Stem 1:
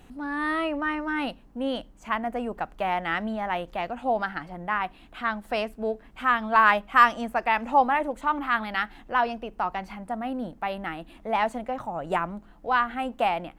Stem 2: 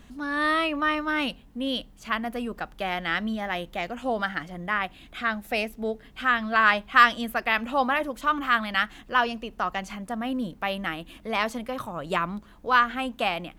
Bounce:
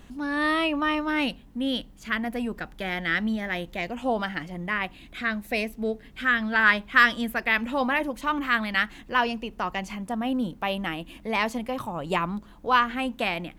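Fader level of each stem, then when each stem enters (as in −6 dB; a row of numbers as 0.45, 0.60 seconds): −5.5, 0.0 decibels; 0.00, 0.00 seconds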